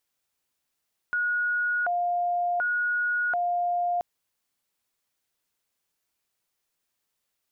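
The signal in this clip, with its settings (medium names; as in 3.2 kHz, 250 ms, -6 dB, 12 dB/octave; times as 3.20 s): siren hi-lo 704–1450 Hz 0.68 per s sine -23 dBFS 2.88 s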